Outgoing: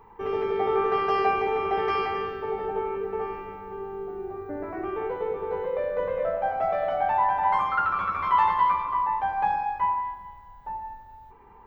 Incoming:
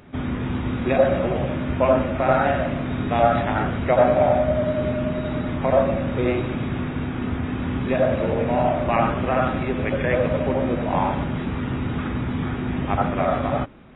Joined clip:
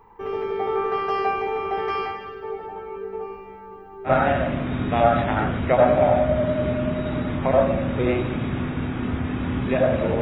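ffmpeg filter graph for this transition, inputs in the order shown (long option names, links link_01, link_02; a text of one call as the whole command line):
ffmpeg -i cue0.wav -i cue1.wav -filter_complex "[0:a]asplit=3[link_01][link_02][link_03];[link_01]afade=type=out:start_time=2.11:duration=0.02[link_04];[link_02]flanger=delay=15.5:depth=4.8:speed=0.3,afade=type=in:start_time=2.11:duration=0.02,afade=type=out:start_time=4.12:duration=0.02[link_05];[link_03]afade=type=in:start_time=4.12:duration=0.02[link_06];[link_04][link_05][link_06]amix=inputs=3:normalize=0,apad=whole_dur=10.21,atrim=end=10.21,atrim=end=4.12,asetpts=PTS-STARTPTS[link_07];[1:a]atrim=start=2.23:end=8.4,asetpts=PTS-STARTPTS[link_08];[link_07][link_08]acrossfade=duration=0.08:curve1=tri:curve2=tri" out.wav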